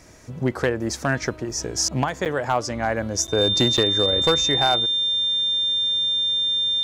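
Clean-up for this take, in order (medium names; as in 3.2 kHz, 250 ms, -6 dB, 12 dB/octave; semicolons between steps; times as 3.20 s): clip repair -11 dBFS; band-stop 3.6 kHz, Q 30; interpolate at 2.25/3.27/3.77 s, 8.2 ms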